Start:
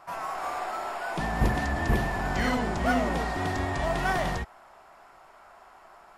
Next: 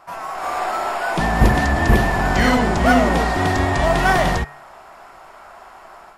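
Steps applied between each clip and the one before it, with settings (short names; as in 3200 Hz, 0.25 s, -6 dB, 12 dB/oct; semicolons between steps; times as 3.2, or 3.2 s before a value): de-hum 143.7 Hz, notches 18; AGC gain up to 7 dB; gain +4 dB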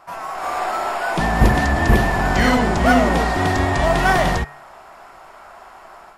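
nothing audible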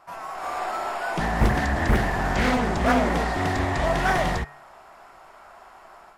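Doppler distortion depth 0.56 ms; gain -6 dB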